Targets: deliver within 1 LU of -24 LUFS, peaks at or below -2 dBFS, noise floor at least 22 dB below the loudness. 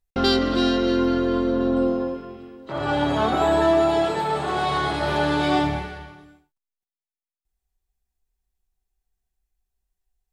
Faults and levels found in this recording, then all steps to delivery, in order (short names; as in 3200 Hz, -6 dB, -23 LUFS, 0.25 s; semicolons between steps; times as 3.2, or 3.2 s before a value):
loudness -22.0 LUFS; peak -8.5 dBFS; loudness target -24.0 LUFS
-> gain -2 dB